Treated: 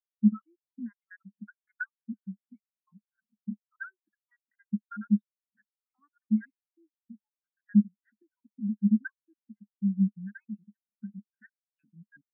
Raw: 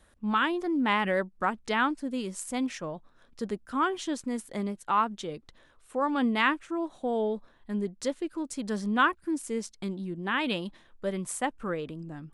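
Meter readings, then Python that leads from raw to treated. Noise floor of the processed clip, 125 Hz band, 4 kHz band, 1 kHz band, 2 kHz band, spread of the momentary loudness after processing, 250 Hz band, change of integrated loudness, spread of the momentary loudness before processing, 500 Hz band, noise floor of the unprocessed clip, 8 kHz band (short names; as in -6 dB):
under -85 dBFS, +4.5 dB, under -40 dB, -26.0 dB, -13.0 dB, 19 LU, +1.0 dB, -0.5 dB, 11 LU, under -40 dB, -61 dBFS, under -40 dB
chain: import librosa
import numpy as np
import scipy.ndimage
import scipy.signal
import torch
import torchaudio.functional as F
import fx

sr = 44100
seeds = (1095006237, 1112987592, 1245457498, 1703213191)

y = fx.spec_dropout(x, sr, seeds[0], share_pct=70)
y = fx.recorder_agc(y, sr, target_db=-20.0, rise_db_per_s=55.0, max_gain_db=30)
y = fx.double_bandpass(y, sr, hz=570.0, octaves=2.9)
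y = fx.spectral_expand(y, sr, expansion=2.5)
y = y * 10.0 ** (5.0 / 20.0)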